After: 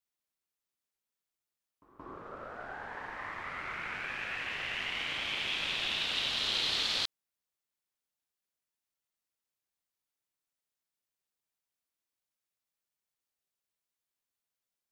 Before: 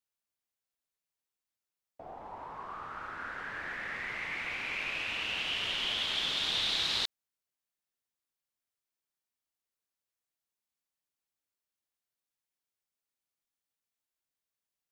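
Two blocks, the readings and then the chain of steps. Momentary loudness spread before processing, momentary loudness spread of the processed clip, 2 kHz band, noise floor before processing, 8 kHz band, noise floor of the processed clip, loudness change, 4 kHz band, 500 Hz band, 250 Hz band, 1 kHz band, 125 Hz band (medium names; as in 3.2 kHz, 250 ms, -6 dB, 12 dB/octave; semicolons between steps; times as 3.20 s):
15 LU, 16 LU, -0.5 dB, under -85 dBFS, 0.0 dB, under -85 dBFS, -0.5 dB, -0.5 dB, +1.0 dB, +0.5 dB, -0.5 dB, +0.5 dB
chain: pre-echo 175 ms -16 dB; ring modulator 380 Hz; trim +2.5 dB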